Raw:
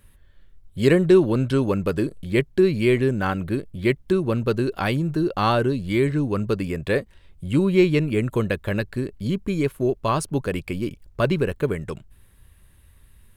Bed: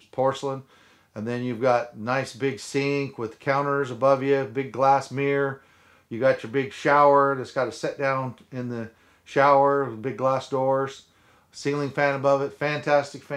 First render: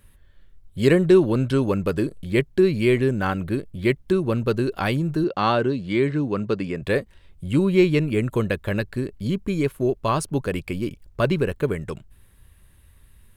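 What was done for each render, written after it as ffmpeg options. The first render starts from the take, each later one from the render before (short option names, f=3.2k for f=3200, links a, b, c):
-filter_complex "[0:a]asettb=1/sr,asplit=3[a][b][c];[a]atrim=end=5.244[d];[b]atrim=start=5.24:end=6.82,asetpts=PTS-STARTPTS,afade=t=in:d=0.004:c=qsin,afade=t=out:st=1.576:d=0.004:c=qsin,highpass=130,lowpass=5.8k[e];[c]atrim=start=6.816[f];[d][e]acrossfade=d=0.004:c1=hsin:c2=qsin[g];[g][f]acrossfade=d=0.004:c1=qsin:c2=hsin"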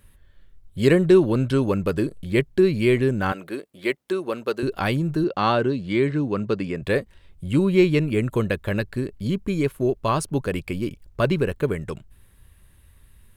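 -filter_complex "[0:a]asettb=1/sr,asplit=3[a][b][c];[a]atrim=end=3.324[d];[b]atrim=start=3.32:end=4.63,asetpts=PTS-STARTPTS,afade=t=in:d=0.004:c=qsin,afade=t=out:st=1.306:d=0.004:c=qsin,highpass=400[e];[c]atrim=start=4.626[f];[d][e]acrossfade=d=0.004:c1=hsin:c2=qsin[g];[g][f]acrossfade=d=0.004:c1=qsin:c2=hsin"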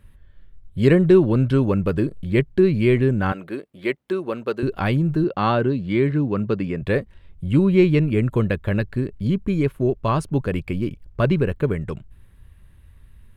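-af "bass=f=250:g=5,treble=f=4k:g=-9"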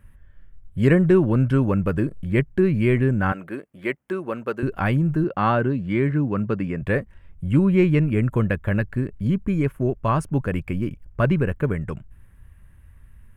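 -af "equalizer=f=400:t=o:w=0.67:g=-4,equalizer=f=1.6k:t=o:w=0.67:g=3,equalizer=f=4k:t=o:w=0.67:g=-12"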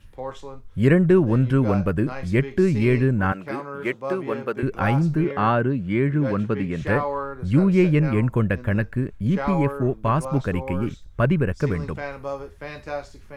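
-filter_complex "[1:a]volume=-10dB[a];[0:a][a]amix=inputs=2:normalize=0"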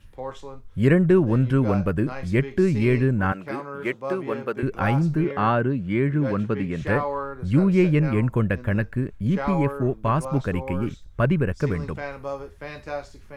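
-af "volume=-1dB"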